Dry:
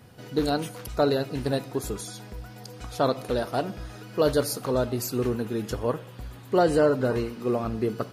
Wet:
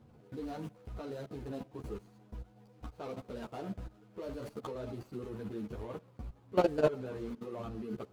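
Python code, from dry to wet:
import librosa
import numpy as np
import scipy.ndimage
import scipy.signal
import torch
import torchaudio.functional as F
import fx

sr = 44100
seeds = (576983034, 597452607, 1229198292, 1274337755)

y = scipy.ndimage.median_filter(x, 25, mode='constant')
y = fx.level_steps(y, sr, step_db=19)
y = fx.ensemble(y, sr)
y = y * 10.0 ** (1.0 / 20.0)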